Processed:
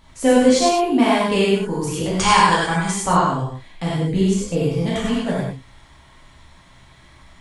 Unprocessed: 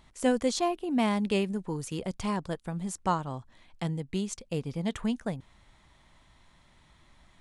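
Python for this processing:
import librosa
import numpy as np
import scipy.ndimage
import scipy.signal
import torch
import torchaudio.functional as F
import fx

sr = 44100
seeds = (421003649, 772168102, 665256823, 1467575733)

p1 = fx.spec_box(x, sr, start_s=2.18, length_s=0.73, low_hz=760.0, high_hz=9700.0, gain_db=12)
p2 = fx.tilt_shelf(p1, sr, db=3.5, hz=970.0, at=(3.9, 4.6))
p3 = p2 + fx.echo_single(p2, sr, ms=96, db=-5.5, dry=0)
p4 = fx.rev_gated(p3, sr, seeds[0], gate_ms=140, shape='flat', drr_db=-7.0)
y = p4 * librosa.db_to_amplitude(4.0)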